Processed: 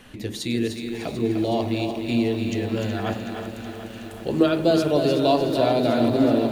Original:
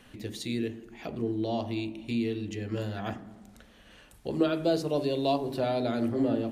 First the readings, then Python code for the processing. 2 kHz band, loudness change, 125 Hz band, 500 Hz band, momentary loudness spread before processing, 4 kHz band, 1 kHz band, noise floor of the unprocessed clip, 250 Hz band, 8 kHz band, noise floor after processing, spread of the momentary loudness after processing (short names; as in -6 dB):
+8.5 dB, +8.0 dB, +7.5 dB, +8.5 dB, 12 LU, +8.5 dB, +8.5 dB, -56 dBFS, +8.0 dB, +9.0 dB, -37 dBFS, 14 LU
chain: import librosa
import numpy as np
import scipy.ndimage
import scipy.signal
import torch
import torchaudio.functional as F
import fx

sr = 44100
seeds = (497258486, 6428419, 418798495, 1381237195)

y = fx.echo_thinned(x, sr, ms=300, feedback_pct=43, hz=360.0, wet_db=-6.5)
y = fx.echo_crushed(y, sr, ms=371, feedback_pct=80, bits=9, wet_db=-11)
y = y * 10.0 ** (7.0 / 20.0)